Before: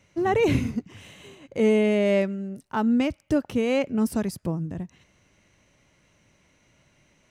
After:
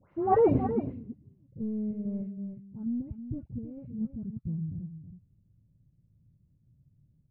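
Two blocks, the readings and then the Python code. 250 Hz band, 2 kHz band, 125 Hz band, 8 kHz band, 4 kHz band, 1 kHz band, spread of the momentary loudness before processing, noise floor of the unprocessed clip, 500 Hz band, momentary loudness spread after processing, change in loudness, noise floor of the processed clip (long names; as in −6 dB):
−8.0 dB, below −20 dB, −4.0 dB, below −35 dB, below −35 dB, can't be measured, 13 LU, −64 dBFS, −7.0 dB, 18 LU, −7.0 dB, −68 dBFS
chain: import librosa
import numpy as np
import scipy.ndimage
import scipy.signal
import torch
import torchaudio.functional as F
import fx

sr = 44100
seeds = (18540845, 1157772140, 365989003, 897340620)

p1 = fx.dead_time(x, sr, dead_ms=0.058)
p2 = fx.high_shelf(p1, sr, hz=5900.0, db=7.5)
p3 = fx.level_steps(p2, sr, step_db=21)
p4 = p2 + (p3 * librosa.db_to_amplitude(1.5))
p5 = fx.dispersion(p4, sr, late='highs', ms=127.0, hz=1900.0)
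p6 = 10.0 ** (-9.5 / 20.0) * np.tanh(p5 / 10.0 ** (-9.5 / 20.0))
p7 = fx.filter_sweep_lowpass(p6, sr, from_hz=1200.0, to_hz=130.0, start_s=0.24, end_s=1.18, q=2.0)
p8 = p7 + fx.echo_single(p7, sr, ms=321, db=-10.5, dry=0)
y = p8 * librosa.db_to_amplitude(-7.0)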